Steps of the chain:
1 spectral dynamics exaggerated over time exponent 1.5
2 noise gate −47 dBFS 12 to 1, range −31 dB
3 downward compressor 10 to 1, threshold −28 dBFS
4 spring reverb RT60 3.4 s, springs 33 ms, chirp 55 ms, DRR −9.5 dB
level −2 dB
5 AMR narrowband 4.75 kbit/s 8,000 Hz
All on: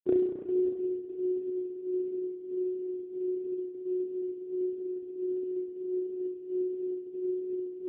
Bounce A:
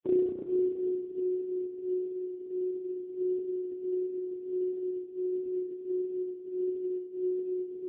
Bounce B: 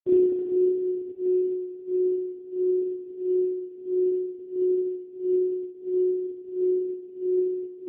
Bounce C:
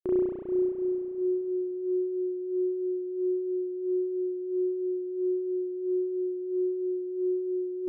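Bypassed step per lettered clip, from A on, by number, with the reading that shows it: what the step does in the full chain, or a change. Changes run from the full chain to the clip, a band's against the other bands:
2, change in crest factor −2.5 dB
3, average gain reduction 3.5 dB
5, change in crest factor −7.0 dB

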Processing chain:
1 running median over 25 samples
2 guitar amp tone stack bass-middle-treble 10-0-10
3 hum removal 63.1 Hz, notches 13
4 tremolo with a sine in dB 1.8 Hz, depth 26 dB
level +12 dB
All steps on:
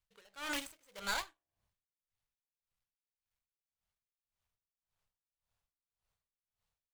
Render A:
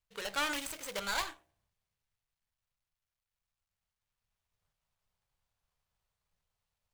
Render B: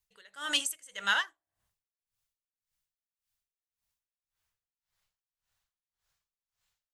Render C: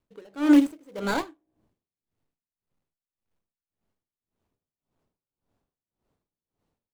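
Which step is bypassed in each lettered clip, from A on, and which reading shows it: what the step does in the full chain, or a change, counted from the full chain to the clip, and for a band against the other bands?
4, change in momentary loudness spread −7 LU
1, 250 Hz band −9.0 dB
2, 250 Hz band +22.5 dB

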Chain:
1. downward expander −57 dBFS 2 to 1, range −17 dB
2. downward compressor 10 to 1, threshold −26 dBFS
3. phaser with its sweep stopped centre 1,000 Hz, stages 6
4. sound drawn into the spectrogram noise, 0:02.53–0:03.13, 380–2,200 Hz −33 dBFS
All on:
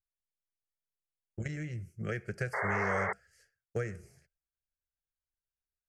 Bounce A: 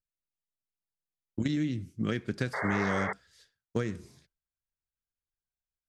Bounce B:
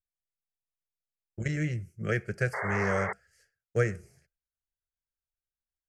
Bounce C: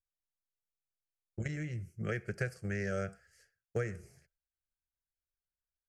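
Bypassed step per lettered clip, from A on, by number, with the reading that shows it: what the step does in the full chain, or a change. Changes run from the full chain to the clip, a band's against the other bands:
3, 4 kHz band +10.5 dB
2, average gain reduction 5.0 dB
4, 1 kHz band −13.0 dB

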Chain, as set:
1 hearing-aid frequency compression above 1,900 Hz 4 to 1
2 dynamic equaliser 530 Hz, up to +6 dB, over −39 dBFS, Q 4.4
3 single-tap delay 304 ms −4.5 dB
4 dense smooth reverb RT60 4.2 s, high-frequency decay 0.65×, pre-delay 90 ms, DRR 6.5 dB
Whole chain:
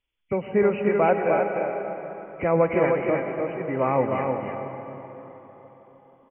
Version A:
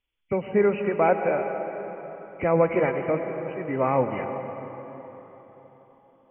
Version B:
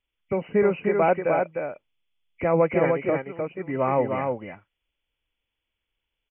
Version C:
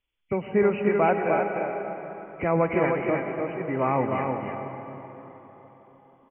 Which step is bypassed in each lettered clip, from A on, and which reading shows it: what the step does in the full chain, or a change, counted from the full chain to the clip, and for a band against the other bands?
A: 3, echo-to-direct ratio −2.0 dB to −6.5 dB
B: 4, echo-to-direct ratio −2.0 dB to −4.5 dB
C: 2, 500 Hz band −2.5 dB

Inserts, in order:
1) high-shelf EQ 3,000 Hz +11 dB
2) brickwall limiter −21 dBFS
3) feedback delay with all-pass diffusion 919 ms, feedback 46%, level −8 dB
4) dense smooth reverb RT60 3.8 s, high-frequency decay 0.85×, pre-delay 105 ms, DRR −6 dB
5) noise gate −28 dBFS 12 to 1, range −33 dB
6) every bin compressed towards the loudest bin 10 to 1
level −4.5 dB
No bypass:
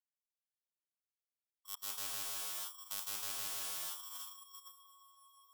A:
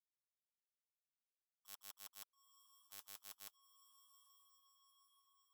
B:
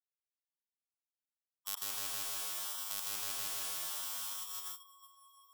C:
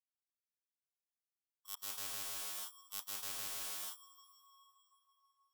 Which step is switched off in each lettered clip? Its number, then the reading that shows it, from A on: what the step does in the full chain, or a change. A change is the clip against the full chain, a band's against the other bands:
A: 4, change in crest factor +8.5 dB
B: 2, average gain reduction 4.0 dB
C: 3, change in momentary loudness spread −5 LU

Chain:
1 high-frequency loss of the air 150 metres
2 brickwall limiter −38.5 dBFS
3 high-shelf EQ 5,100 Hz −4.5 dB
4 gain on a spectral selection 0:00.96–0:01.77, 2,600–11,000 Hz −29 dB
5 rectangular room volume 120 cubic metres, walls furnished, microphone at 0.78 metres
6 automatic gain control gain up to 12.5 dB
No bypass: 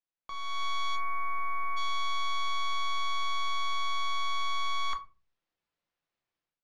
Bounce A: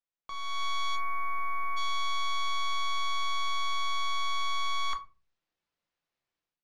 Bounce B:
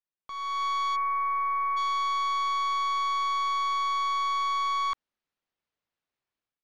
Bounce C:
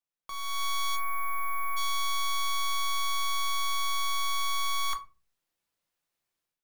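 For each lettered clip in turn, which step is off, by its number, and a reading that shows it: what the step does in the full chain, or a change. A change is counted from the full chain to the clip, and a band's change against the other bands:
3, 8 kHz band +2.5 dB
5, change in crest factor −2.5 dB
1, 8 kHz band +12.0 dB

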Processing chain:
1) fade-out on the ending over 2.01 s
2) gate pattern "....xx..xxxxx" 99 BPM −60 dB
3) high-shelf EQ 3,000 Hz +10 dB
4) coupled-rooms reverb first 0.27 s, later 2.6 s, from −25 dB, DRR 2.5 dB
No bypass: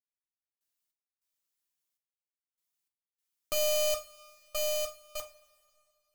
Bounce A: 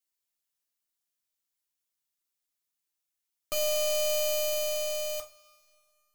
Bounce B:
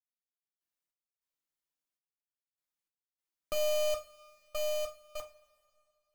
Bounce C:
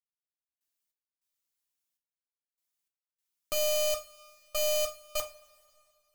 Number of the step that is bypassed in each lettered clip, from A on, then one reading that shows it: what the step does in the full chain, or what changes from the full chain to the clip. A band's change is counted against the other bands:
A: 2, 1 kHz band −3.0 dB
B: 3, 8 kHz band −6.0 dB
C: 1, change in momentary loudness spread −6 LU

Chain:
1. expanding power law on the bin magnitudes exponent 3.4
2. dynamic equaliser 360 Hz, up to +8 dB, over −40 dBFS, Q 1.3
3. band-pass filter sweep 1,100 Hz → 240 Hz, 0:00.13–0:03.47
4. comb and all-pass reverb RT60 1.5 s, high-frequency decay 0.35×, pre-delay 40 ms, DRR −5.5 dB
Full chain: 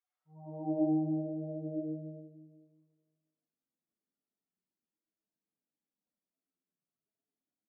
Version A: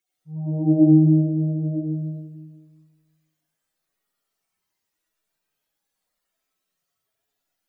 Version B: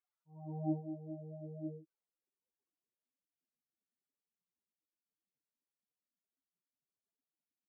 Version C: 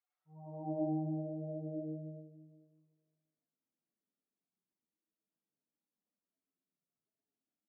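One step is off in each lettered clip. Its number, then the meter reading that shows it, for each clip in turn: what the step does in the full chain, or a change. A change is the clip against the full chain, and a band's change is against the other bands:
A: 3, change in integrated loudness +15.5 LU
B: 4, change in crest factor +3.0 dB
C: 2, change in integrated loudness −5.0 LU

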